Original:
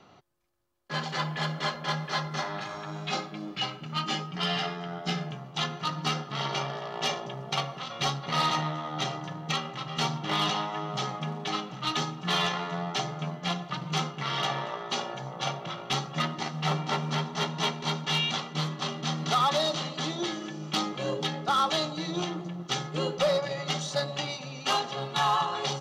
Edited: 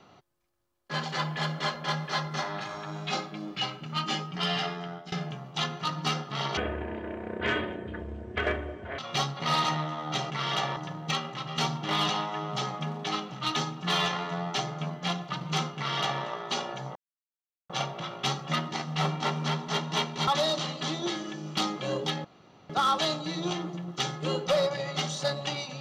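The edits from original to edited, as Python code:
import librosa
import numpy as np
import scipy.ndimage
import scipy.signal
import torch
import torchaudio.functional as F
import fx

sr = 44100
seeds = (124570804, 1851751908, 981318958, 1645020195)

y = fx.edit(x, sr, fx.fade_out_to(start_s=4.75, length_s=0.37, curve='qsin', floor_db=-22.0),
    fx.speed_span(start_s=6.57, length_s=1.28, speed=0.53),
    fx.duplicate(start_s=14.17, length_s=0.46, to_s=9.17),
    fx.insert_silence(at_s=15.36, length_s=0.74),
    fx.cut(start_s=17.94, length_s=1.5),
    fx.insert_room_tone(at_s=21.41, length_s=0.45), tone=tone)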